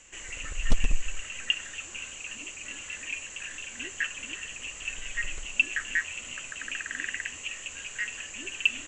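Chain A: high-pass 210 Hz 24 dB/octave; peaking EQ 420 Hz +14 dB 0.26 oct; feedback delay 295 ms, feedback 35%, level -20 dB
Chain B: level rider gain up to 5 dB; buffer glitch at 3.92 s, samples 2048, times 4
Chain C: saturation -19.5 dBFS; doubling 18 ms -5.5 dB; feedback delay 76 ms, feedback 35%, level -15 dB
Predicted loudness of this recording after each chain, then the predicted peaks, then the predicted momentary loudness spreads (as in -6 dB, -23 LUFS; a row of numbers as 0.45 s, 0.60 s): -33.0 LUFS, -28.0 LUFS, -33.0 LUFS; -8.5 dBFS, -4.5 dBFS, -15.0 dBFS; 10 LU, 9 LU, 7 LU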